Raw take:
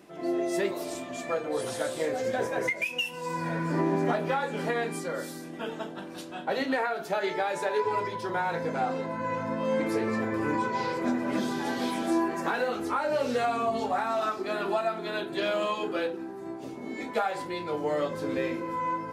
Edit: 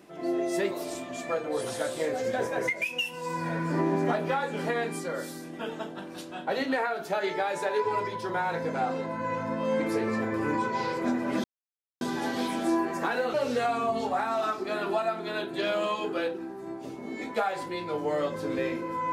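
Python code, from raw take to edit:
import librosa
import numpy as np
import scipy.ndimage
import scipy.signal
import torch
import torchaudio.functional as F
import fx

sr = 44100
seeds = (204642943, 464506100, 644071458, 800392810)

y = fx.edit(x, sr, fx.insert_silence(at_s=11.44, length_s=0.57),
    fx.cut(start_s=12.77, length_s=0.36), tone=tone)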